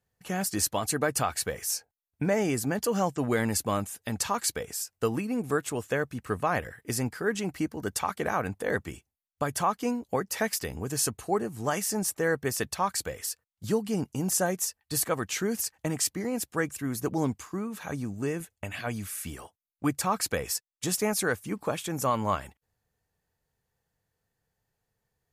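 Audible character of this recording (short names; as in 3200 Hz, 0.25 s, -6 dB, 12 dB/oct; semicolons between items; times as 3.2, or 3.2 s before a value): noise floor -86 dBFS; spectral tilt -4.0 dB/oct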